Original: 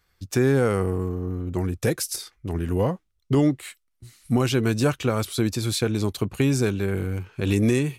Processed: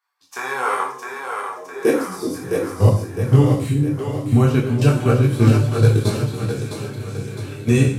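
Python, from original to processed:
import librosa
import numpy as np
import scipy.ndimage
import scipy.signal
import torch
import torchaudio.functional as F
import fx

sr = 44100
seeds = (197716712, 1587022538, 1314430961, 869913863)

p1 = fx.reverse_delay_fb(x, sr, ms=311, feedback_pct=47, wet_db=-7)
p2 = fx.low_shelf(p1, sr, hz=420.0, db=-5.5, at=(6.21, 7.68))
p3 = fx.level_steps(p2, sr, step_db=21)
p4 = fx.filter_sweep_highpass(p3, sr, from_hz=960.0, to_hz=110.0, start_s=1.37, end_s=2.35, q=5.6)
p5 = p4 + fx.echo_split(p4, sr, split_hz=350.0, low_ms=376, high_ms=660, feedback_pct=52, wet_db=-5.0, dry=0)
p6 = fx.rev_gated(p5, sr, seeds[0], gate_ms=190, shape='falling', drr_db=-1.0)
p7 = fx.detune_double(p6, sr, cents=12)
y = F.gain(torch.from_numpy(p7), 6.0).numpy()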